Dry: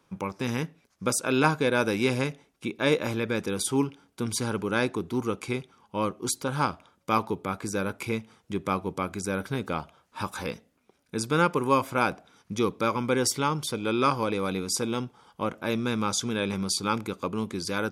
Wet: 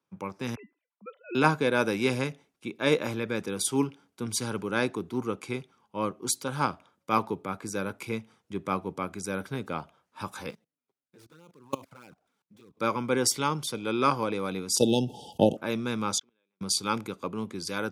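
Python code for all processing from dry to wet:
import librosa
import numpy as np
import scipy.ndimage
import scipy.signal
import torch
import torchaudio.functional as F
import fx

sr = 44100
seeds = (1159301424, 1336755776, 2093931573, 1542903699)

y = fx.chain(x, sr, fx.sine_speech(),
    fx.comb_fb(f0_hz=1000.0, decay_s=0.27, harmonics='all', damping=0.0, mix_pct=70), at=(0.55, 1.35))
y = fx.chain(y, sr, fx.dead_time(dead_ms=0.093),
    fx.env_flanger(rest_ms=7.8, full_db=-18.5),
    fx.level_steps(step_db=22), at=(10.5, 12.77))
y = fx.chain(y, sr, fx.transient(attack_db=12, sustain_db=-5),
    fx.brickwall_bandstop(low_hz=890.0, high_hz=2600.0),
    fx.env_flatten(amount_pct=50), at=(14.77, 15.57))
y = fx.chain(y, sr, fx.bandpass_edges(low_hz=260.0, high_hz=3400.0),
    fx.gate_flip(shuts_db=-23.0, range_db=-41),
    fx.pre_swell(db_per_s=30.0), at=(16.18, 16.61))
y = scipy.signal.sosfilt(scipy.signal.butter(2, 97.0, 'highpass', fs=sr, output='sos'), y)
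y = fx.band_widen(y, sr, depth_pct=40)
y = y * librosa.db_to_amplitude(-2.0)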